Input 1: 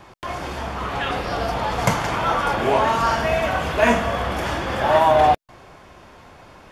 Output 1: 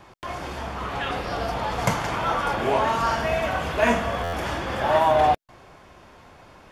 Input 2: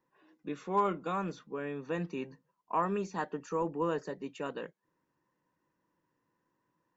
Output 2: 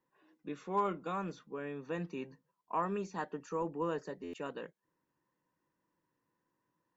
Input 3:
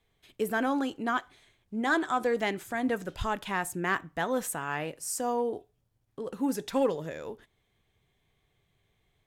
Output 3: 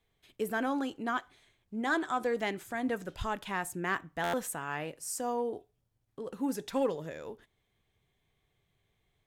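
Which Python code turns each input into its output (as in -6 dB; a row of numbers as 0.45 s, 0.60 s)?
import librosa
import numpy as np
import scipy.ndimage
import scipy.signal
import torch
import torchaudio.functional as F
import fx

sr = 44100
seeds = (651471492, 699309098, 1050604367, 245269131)

y = fx.buffer_glitch(x, sr, at_s=(4.23,), block=512, repeats=8)
y = F.gain(torch.from_numpy(y), -3.5).numpy()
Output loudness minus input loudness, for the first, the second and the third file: -3.5 LU, -3.5 LU, -3.5 LU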